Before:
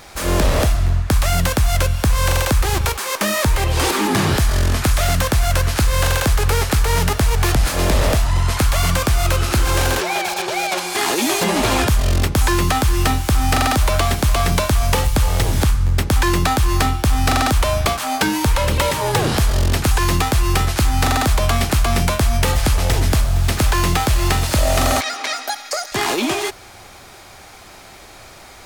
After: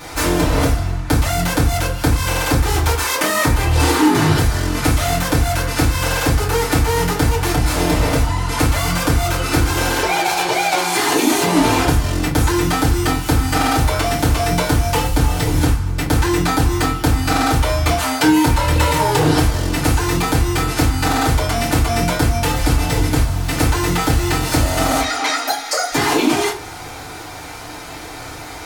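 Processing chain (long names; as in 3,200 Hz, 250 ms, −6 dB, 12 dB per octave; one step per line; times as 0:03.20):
downward compressor 3 to 1, threshold −24 dBFS, peak gain reduction 9.5 dB
feedback delay network reverb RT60 0.38 s, low-frequency decay 1.1×, high-frequency decay 0.65×, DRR −8.5 dB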